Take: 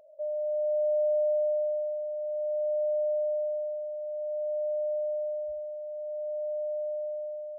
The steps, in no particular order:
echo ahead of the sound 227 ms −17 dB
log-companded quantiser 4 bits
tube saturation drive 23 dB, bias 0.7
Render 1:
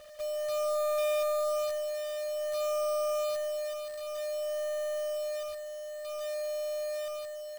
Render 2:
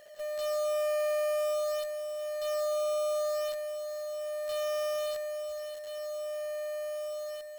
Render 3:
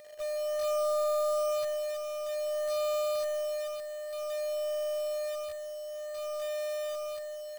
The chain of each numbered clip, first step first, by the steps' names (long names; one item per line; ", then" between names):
tube saturation, then echo ahead of the sound, then log-companded quantiser
log-companded quantiser, then tube saturation, then echo ahead of the sound
tube saturation, then log-companded quantiser, then echo ahead of the sound